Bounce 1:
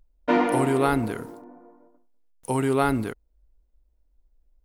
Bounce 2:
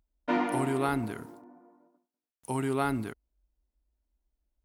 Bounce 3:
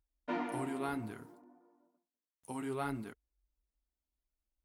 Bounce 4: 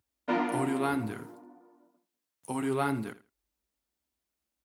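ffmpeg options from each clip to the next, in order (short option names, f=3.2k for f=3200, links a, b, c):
-af "highpass=53,equalizer=f=490:t=o:w=0.26:g=-9,volume=-6dB"
-af "flanger=delay=2.2:depth=9.4:regen=-41:speed=0.6:shape=sinusoidal,volume=-5dB"
-af "highpass=f=77:w=0.5412,highpass=f=77:w=1.3066,aecho=1:1:82|164:0.15|0.0254,volume=8dB"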